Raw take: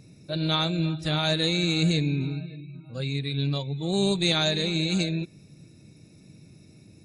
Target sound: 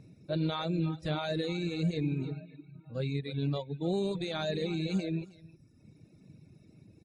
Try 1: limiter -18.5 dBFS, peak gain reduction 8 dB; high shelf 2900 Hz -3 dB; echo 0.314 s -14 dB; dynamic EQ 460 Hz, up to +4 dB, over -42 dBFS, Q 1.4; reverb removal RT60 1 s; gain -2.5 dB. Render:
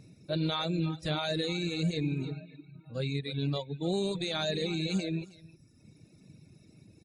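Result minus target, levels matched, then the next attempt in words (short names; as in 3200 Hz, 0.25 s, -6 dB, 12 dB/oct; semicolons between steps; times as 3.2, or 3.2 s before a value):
8000 Hz band +7.0 dB
limiter -18.5 dBFS, peak gain reduction 8 dB; high shelf 2900 Hz -12.5 dB; echo 0.314 s -14 dB; dynamic EQ 460 Hz, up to +4 dB, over -42 dBFS, Q 1.4; reverb removal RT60 1 s; gain -2.5 dB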